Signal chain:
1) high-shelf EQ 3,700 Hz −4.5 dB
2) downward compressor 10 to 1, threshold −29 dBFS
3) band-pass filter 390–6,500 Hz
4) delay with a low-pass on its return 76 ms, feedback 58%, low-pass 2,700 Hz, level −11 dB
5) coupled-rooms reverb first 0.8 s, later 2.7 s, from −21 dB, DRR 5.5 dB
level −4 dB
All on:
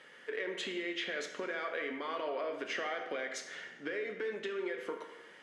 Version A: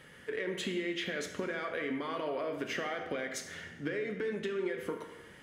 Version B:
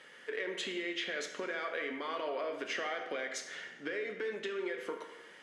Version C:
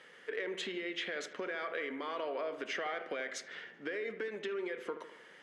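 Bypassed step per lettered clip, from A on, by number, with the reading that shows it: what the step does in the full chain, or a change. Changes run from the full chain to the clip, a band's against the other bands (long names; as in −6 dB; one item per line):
3, 250 Hz band +5.5 dB
1, 8 kHz band +2.5 dB
5, echo-to-direct ratio −4.0 dB to −10.0 dB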